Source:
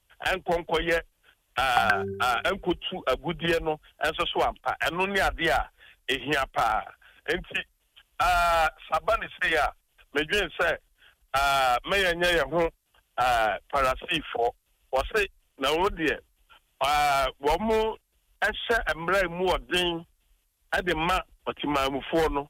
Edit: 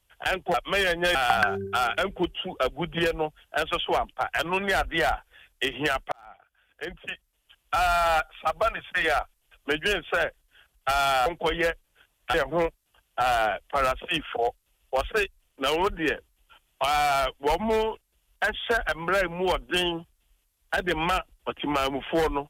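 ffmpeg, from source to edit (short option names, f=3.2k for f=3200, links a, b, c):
-filter_complex "[0:a]asplit=6[a][b][c][d][e][f];[a]atrim=end=0.542[g];[b]atrim=start=11.728:end=12.342[h];[c]atrim=start=1.618:end=6.59,asetpts=PTS-STARTPTS,afade=t=out:st=4.968:d=0.004:c=hsin[i];[d]atrim=start=6.59:end=11.732,asetpts=PTS-STARTPTS,afade=t=in:d=1.75[j];[e]atrim=start=0.538:end=1.622[k];[f]atrim=start=12.338[l];[g][h]acrossfade=d=0.004:c1=hsin:c2=hsin[m];[i][j]concat=n=2:v=0:a=1[n];[m][n]acrossfade=d=0.004:c1=hsin:c2=hsin[o];[o][k]acrossfade=d=0.004:c1=hsin:c2=hsin[p];[p][l]acrossfade=d=0.004:c1=hsin:c2=hsin"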